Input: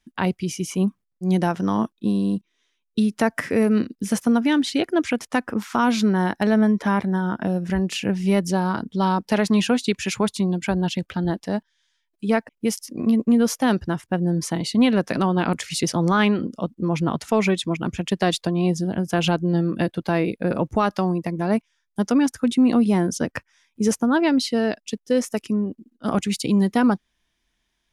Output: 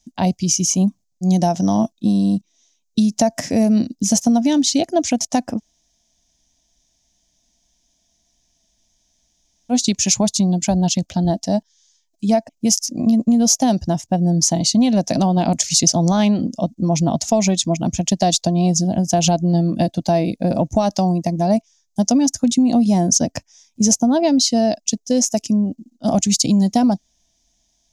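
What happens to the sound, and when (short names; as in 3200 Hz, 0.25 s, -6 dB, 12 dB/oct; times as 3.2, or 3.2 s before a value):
5.57–9.72 room tone, crossfade 0.06 s
whole clip: EQ curve 280 Hz 0 dB, 430 Hz -12 dB, 670 Hz +6 dB, 1300 Hz -18 dB, 3200 Hz -5 dB, 6500 Hz +12 dB, 9400 Hz -6 dB; compressor, threshold -18 dBFS; high shelf 7700 Hz +4.5 dB; gain +6.5 dB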